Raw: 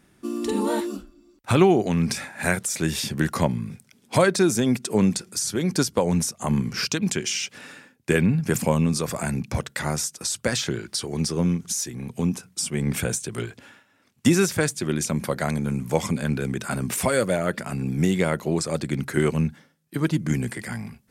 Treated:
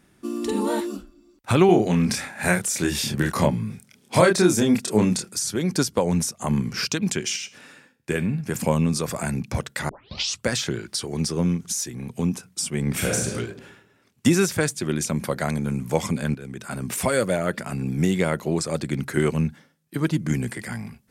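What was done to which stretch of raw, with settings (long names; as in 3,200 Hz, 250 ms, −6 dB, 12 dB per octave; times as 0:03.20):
0:01.66–0:05.29: double-tracking delay 28 ms −2.5 dB
0:07.36–0:08.60: tuned comb filter 72 Hz, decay 0.43 s, mix 50%
0:09.89: tape start 0.55 s
0:12.91–0:13.34: thrown reverb, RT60 0.96 s, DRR −2.5 dB
0:16.35–0:17.09: fade in linear, from −13.5 dB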